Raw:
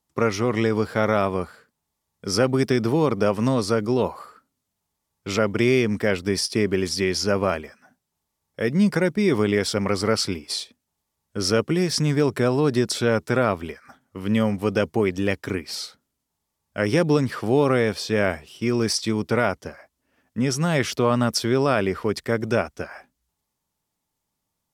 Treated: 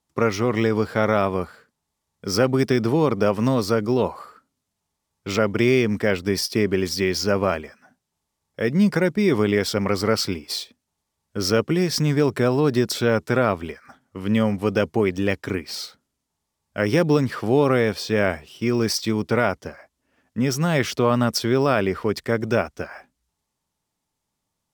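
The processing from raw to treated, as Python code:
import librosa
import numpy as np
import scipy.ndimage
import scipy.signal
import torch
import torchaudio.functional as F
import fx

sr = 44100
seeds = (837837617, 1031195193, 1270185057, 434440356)

y = np.interp(np.arange(len(x)), np.arange(len(x))[::2], x[::2])
y = F.gain(torch.from_numpy(y), 1.0).numpy()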